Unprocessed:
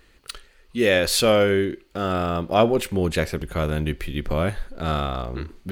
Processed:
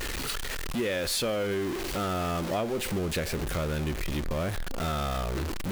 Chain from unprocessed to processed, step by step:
converter with a step at zero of −19.5 dBFS
downward compressor, threshold −19 dBFS, peak gain reduction 8.5 dB
level −7.5 dB

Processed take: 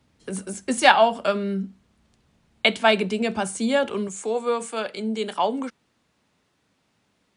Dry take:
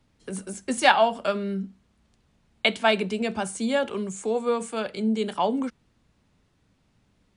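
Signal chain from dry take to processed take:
high-pass filter 54 Hz 6 dB per octave, from 0:04.08 400 Hz
level +3 dB

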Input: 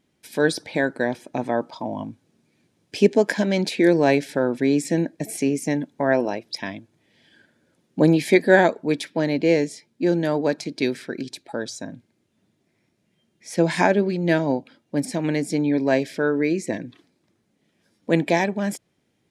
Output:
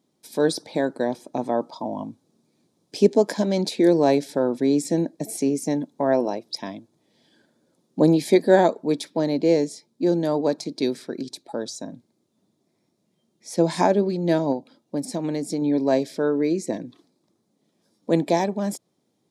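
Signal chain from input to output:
high-pass filter 150 Hz 12 dB per octave
flat-topped bell 2,100 Hz −10 dB 1.3 octaves
0:14.52–0:15.62: downward compressor 3 to 1, threshold −23 dBFS, peak gain reduction 4.5 dB

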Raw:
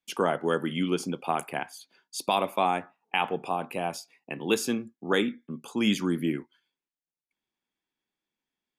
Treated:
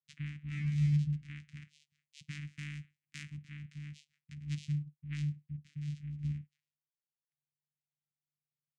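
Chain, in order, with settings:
channel vocoder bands 4, saw 147 Hz
0:00.45–0:00.87: thrown reverb, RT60 0.89 s, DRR −5 dB
0:02.47–0:03.42: high-shelf EQ 5,500 Hz +9.5 dB
0:05.61–0:06.19: downward compressor 2 to 1, threshold −36 dBFS, peak gain reduction 10.5 dB
elliptic band-stop filter 180–2,000 Hz, stop band 80 dB
level −6.5 dB

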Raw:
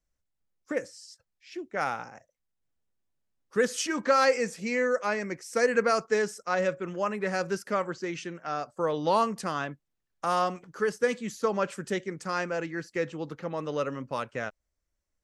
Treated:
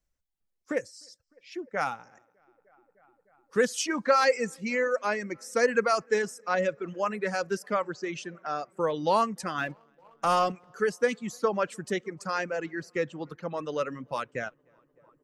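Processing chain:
feedback echo with a low-pass in the loop 303 ms, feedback 76%, low-pass 3,800 Hz, level −23 dB
reverb reduction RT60 1.6 s
0:09.58–0:10.52: leveller curve on the samples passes 1
level +1 dB

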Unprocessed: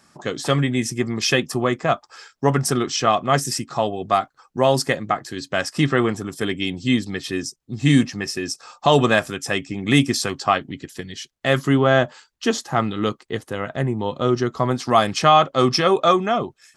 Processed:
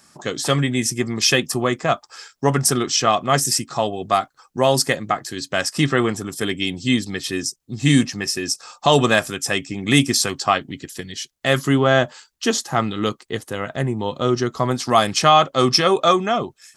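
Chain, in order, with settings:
high-shelf EQ 4,500 Hz +9 dB

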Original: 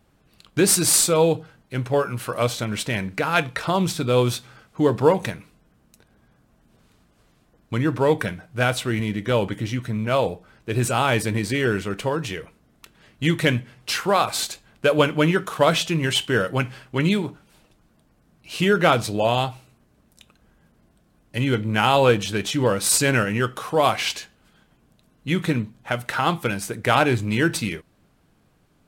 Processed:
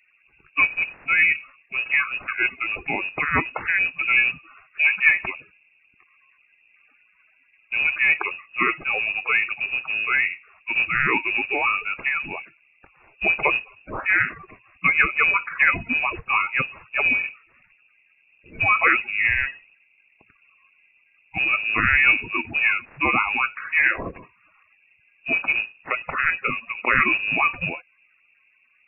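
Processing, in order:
spectral magnitudes quantised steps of 30 dB
voice inversion scrambler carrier 2,700 Hz

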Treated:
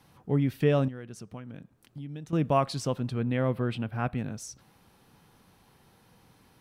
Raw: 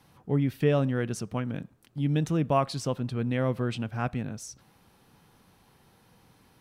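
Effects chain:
0:00.88–0:02.33: downward compressor 3 to 1, threshold −42 dBFS, peak gain reduction 15.5 dB
0:03.19–0:04.18: parametric band 6,500 Hz −12.5 dB 0.81 octaves

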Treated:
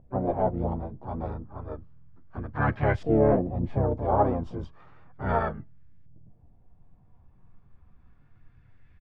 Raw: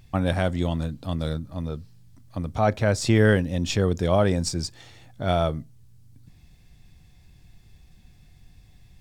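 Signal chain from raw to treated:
multi-voice chorus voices 2, 0.76 Hz, delay 12 ms, depth 3.7 ms
pitch-shifted copies added −7 semitones −4 dB, +5 semitones −3 dB, +12 semitones −17 dB
auto-filter low-pass saw up 0.33 Hz 630–1,900 Hz
level −5.5 dB

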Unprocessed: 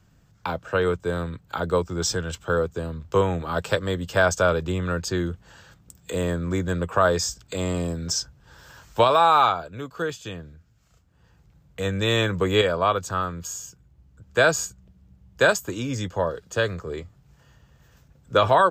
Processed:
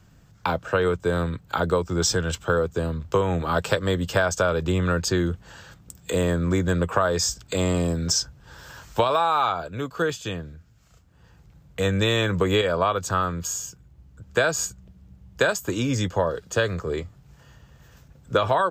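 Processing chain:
downward compressor 6 to 1, threshold −22 dBFS, peak gain reduction 9.5 dB
level +4.5 dB

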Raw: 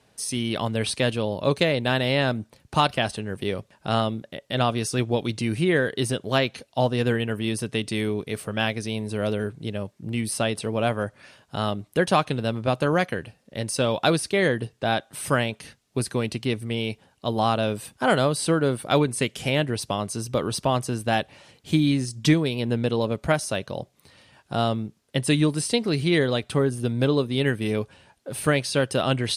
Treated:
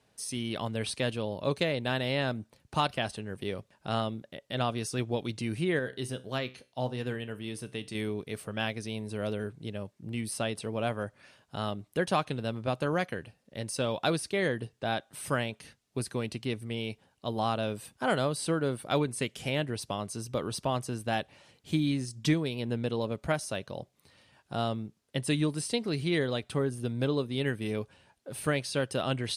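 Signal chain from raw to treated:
0:05.79–0:07.95: tuned comb filter 64 Hz, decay 0.35 s, harmonics all, mix 50%
level −7.5 dB

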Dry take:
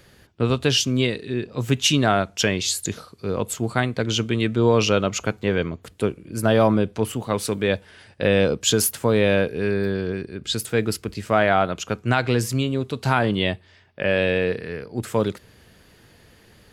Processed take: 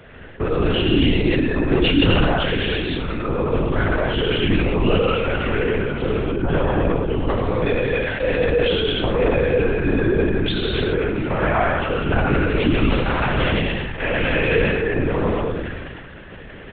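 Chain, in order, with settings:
0:12.44–0:14.63: compressing power law on the bin magnitudes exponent 0.62
low-pass filter 2,900 Hz 24 dB per octave
mains-hum notches 60/120/180 Hz
comb filter 4 ms, depth 86%
downward compressor 6 to 1, threshold −29 dBFS, peak gain reduction 18 dB
single-tap delay 94 ms −7.5 dB
reverb whose tail is shaped and stops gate 330 ms flat, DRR −5.5 dB
linear-prediction vocoder at 8 kHz whisper
level that may fall only so fast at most 28 dB per second
level +5.5 dB

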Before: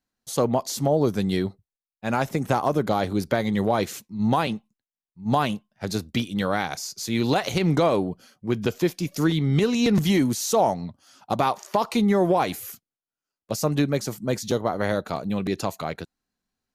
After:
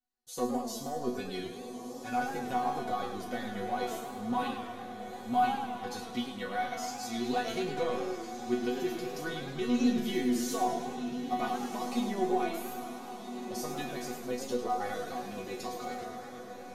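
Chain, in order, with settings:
0:01.09–0:02.16: comb filter 6.9 ms, depth 76%
soft clipping −9 dBFS, distortion −25 dB
resonators tuned to a chord B3 fifth, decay 0.33 s
feedback delay with all-pass diffusion 1,418 ms, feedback 47%, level −8.5 dB
feedback echo with a swinging delay time 105 ms, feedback 65%, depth 161 cents, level −9 dB
level +6.5 dB

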